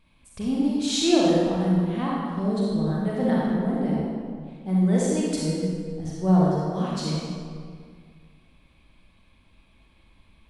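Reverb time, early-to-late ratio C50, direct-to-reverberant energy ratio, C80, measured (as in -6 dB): 2.0 s, -3.5 dB, -6.0 dB, -1.0 dB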